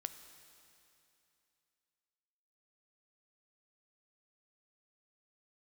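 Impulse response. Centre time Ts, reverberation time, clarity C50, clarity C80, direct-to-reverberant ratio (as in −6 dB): 24 ms, 2.8 s, 10.0 dB, 11.0 dB, 9.0 dB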